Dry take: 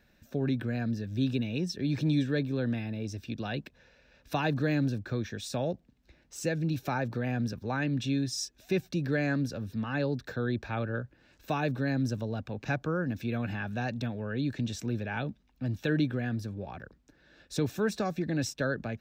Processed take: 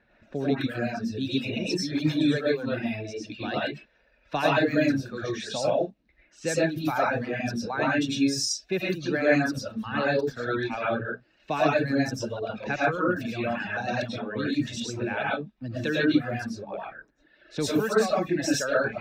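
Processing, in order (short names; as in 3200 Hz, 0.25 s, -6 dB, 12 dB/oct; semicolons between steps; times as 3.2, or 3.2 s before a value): reverb, pre-delay 65 ms, DRR -6 dB; reverb removal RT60 1.5 s; low-pass opened by the level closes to 2200 Hz, open at -23.5 dBFS; low shelf 190 Hz -10.5 dB; gain +3.5 dB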